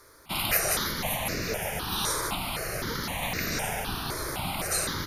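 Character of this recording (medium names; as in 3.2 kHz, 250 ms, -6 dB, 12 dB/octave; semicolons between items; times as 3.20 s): a quantiser's noise floor 12-bit, dither none; notches that jump at a steady rate 3.9 Hz 760–3200 Hz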